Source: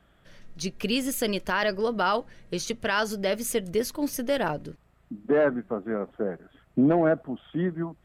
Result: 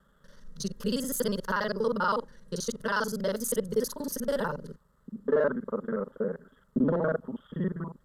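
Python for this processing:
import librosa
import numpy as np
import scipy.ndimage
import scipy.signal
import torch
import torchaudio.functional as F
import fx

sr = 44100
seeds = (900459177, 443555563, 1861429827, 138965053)

y = fx.local_reverse(x, sr, ms=40.0)
y = fx.fixed_phaser(y, sr, hz=480.0, stages=8)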